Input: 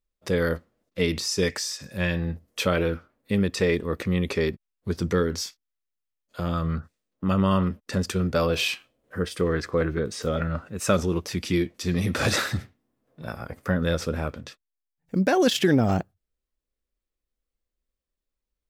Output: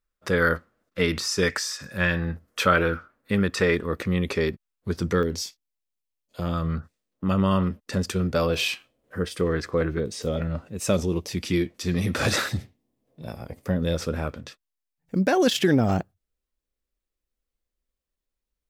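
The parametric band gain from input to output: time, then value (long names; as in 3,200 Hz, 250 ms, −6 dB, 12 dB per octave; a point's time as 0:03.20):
parametric band 1,400 Hz 0.83 octaves
+10.5 dB
from 0:03.86 +2.5 dB
from 0:05.23 −9 dB
from 0:06.42 −1 dB
from 0:10.00 −9 dB
from 0:11.37 0 dB
from 0:12.49 −11.5 dB
from 0:13.96 0 dB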